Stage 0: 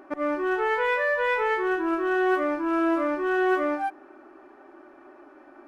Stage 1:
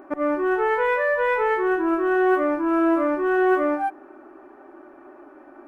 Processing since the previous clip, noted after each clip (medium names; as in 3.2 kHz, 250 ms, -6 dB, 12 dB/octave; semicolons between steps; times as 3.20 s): peaking EQ 4.6 kHz -10.5 dB 2 oct; trim +4.5 dB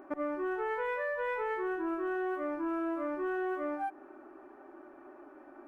compression, threshold -25 dBFS, peak gain reduction 10.5 dB; trim -6.5 dB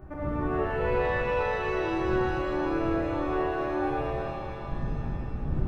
wind noise 100 Hz -36 dBFS; pitch-shifted reverb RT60 3.3 s, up +7 st, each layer -8 dB, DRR -7 dB; trim -4.5 dB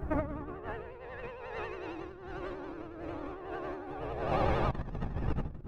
vibrato 11 Hz 99 cents; compressor with a negative ratio -35 dBFS, ratio -0.5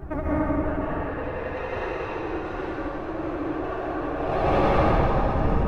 plate-style reverb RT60 4.5 s, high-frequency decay 0.6×, pre-delay 115 ms, DRR -9.5 dB; trim +1 dB